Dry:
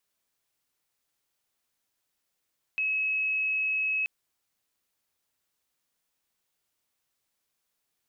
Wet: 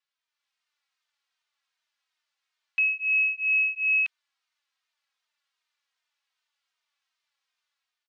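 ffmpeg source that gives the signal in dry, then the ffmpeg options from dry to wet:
-f lavfi -i "aevalsrc='0.0562*sin(2*PI*2570*t)':d=1.28:s=44100"
-filter_complex "[0:a]dynaudnorm=f=160:g=5:m=6.5dB,asuperpass=centerf=2200:order=4:qfactor=0.58,asplit=2[a][b];[b]adelay=3,afreqshift=-2.6[c];[a][c]amix=inputs=2:normalize=1"

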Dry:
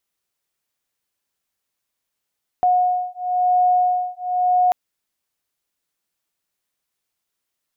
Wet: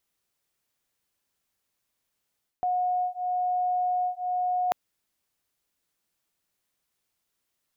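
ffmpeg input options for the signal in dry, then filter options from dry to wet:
-f lavfi -i "aevalsrc='0.119*(sin(2*PI*725*t)+sin(2*PI*725.98*t))':d=2.09:s=44100"
-af "lowshelf=f=360:g=3.5,areverse,acompressor=threshold=-25dB:ratio=10,areverse"

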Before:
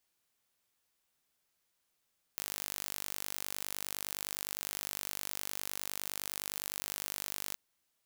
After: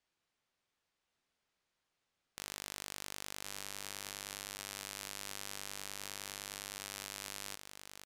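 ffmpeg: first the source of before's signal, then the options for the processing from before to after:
-f lavfi -i "aevalsrc='0.282*eq(mod(n,886),0)':d=5.18:s=44100"
-filter_complex "[0:a]adynamicsmooth=sensitivity=2.5:basefreq=5.6k,asplit=2[a][b];[b]aecho=0:1:1075:0.422[c];[a][c]amix=inputs=2:normalize=0,aresample=32000,aresample=44100"

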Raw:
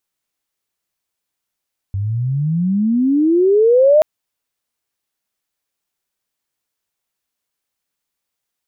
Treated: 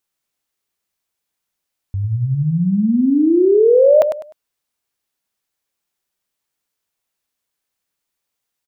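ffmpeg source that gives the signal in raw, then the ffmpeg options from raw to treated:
-f lavfi -i "aevalsrc='pow(10,(-17.5+11*t/2.08)/20)*sin(2*PI*95*2.08/log(630/95)*(exp(log(630/95)*t/2.08)-1))':d=2.08:s=44100"
-af "aecho=1:1:101|202|303:0.398|0.107|0.029"

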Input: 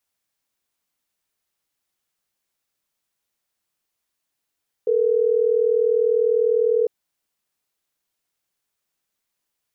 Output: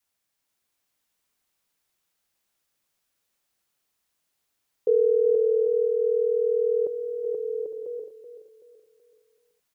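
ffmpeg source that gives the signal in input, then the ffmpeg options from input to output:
-f lavfi -i "aevalsrc='0.119*(sin(2*PI*440*t)+sin(2*PI*480*t))*clip(min(mod(t,6),2-mod(t,6))/0.005,0,1)':d=3.12:s=44100"
-filter_complex "[0:a]asplit=2[a][b];[b]aecho=0:1:480|792|994.8|1127|1212:0.631|0.398|0.251|0.158|0.1[c];[a][c]amix=inputs=2:normalize=0,adynamicequalizer=threshold=0.0355:dfrequency=500:dqfactor=2.4:tfrequency=500:tqfactor=2.4:attack=5:release=100:ratio=0.375:range=2.5:mode=cutabove:tftype=bell,asplit=2[d][e];[e]aecho=0:1:379|758|1137|1516:0.282|0.113|0.0451|0.018[f];[d][f]amix=inputs=2:normalize=0"

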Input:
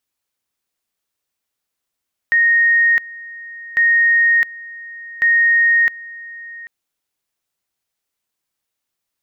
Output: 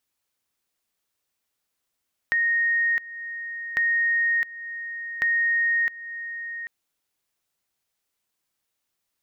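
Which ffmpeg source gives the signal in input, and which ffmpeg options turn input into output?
-f lavfi -i "aevalsrc='pow(10,(-10-20.5*gte(mod(t,1.45),0.66))/20)*sin(2*PI*1860*t)':d=4.35:s=44100"
-af "acompressor=threshold=-29dB:ratio=2"

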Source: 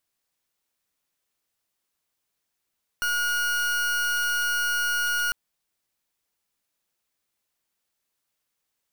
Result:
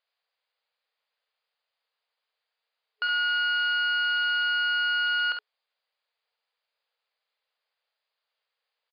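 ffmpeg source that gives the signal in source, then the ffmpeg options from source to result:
-f lavfi -i "aevalsrc='0.0562*(2*lt(mod(1440*t,1),0.39)-1)':d=2.3:s=44100"
-af "afftfilt=real='re*between(b*sr/4096,430,5000)':imag='im*between(b*sr/4096,430,5000)':win_size=4096:overlap=0.75,aecho=1:1:49|68:0.422|0.422"

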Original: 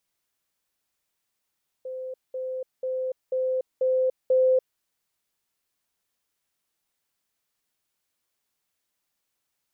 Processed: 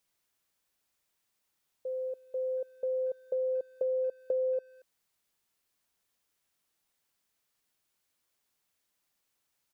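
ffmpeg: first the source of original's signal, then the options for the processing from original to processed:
-f lavfi -i "aevalsrc='pow(10,(-31.5+3*floor(t/0.49))/20)*sin(2*PI*516*t)*clip(min(mod(t,0.49),0.29-mod(t,0.49))/0.005,0,1)':d=2.94:s=44100"
-filter_complex "[0:a]acompressor=threshold=-29dB:ratio=6,asplit=2[a][b];[b]adelay=230,highpass=300,lowpass=3.4k,asoftclip=type=hard:threshold=-33dB,volume=-22dB[c];[a][c]amix=inputs=2:normalize=0"

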